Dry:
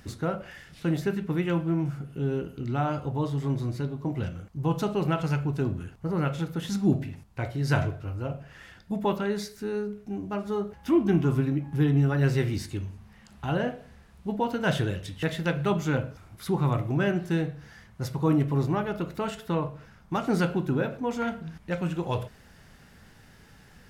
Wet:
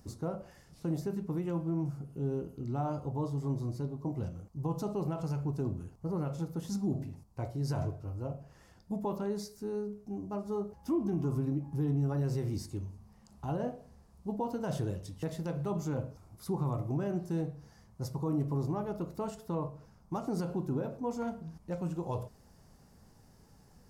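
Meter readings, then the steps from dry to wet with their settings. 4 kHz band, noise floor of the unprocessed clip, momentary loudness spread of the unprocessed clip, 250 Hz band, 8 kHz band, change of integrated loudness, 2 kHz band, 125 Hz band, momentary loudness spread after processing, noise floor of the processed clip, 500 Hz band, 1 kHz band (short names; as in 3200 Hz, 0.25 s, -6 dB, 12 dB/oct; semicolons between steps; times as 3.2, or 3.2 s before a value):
-13.5 dB, -54 dBFS, 11 LU, -7.0 dB, -6.0 dB, -7.5 dB, -19.5 dB, -7.0 dB, 9 LU, -61 dBFS, -7.0 dB, -8.5 dB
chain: limiter -18.5 dBFS, peak gain reduction 6.5 dB; band shelf 2300 Hz -12.5 dB; gain -5.5 dB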